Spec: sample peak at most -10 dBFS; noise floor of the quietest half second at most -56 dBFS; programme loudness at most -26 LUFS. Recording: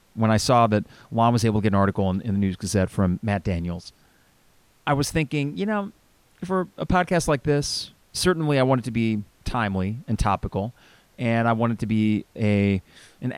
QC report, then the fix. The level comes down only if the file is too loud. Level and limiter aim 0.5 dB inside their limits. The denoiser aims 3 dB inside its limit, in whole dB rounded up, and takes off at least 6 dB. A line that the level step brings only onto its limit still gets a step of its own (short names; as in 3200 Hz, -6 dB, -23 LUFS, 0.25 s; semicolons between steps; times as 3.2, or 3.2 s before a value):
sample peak -5.5 dBFS: fail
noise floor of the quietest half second -59 dBFS: OK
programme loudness -23.5 LUFS: fail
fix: gain -3 dB; limiter -10.5 dBFS